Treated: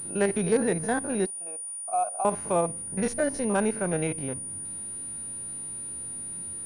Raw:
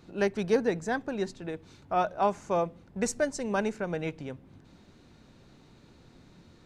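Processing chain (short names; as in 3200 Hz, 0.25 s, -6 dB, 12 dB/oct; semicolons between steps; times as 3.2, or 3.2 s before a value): stepped spectrum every 50 ms; in parallel at 0 dB: limiter -24.5 dBFS, peak gain reduction 10 dB; 1.26–2.25 on the sum: vowel filter a; pulse-width modulation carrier 9500 Hz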